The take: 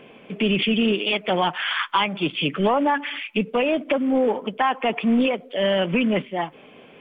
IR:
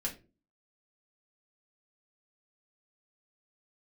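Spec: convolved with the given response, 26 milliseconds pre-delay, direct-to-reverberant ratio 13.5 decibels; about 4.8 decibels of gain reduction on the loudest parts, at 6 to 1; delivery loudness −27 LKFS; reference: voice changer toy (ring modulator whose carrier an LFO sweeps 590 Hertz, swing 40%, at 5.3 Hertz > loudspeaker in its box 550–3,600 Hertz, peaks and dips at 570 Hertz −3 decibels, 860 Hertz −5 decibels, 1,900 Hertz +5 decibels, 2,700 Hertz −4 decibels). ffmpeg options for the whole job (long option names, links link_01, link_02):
-filter_complex "[0:a]acompressor=threshold=-21dB:ratio=6,asplit=2[link_01][link_02];[1:a]atrim=start_sample=2205,adelay=26[link_03];[link_02][link_03]afir=irnorm=-1:irlink=0,volume=-15.5dB[link_04];[link_01][link_04]amix=inputs=2:normalize=0,aeval=exprs='val(0)*sin(2*PI*590*n/s+590*0.4/5.3*sin(2*PI*5.3*n/s))':channel_layout=same,highpass=550,equalizer=frequency=570:width_type=q:width=4:gain=-3,equalizer=frequency=860:width_type=q:width=4:gain=-5,equalizer=frequency=1900:width_type=q:width=4:gain=5,equalizer=frequency=2700:width_type=q:width=4:gain=-4,lowpass=frequency=3600:width=0.5412,lowpass=frequency=3600:width=1.3066,volume=3.5dB"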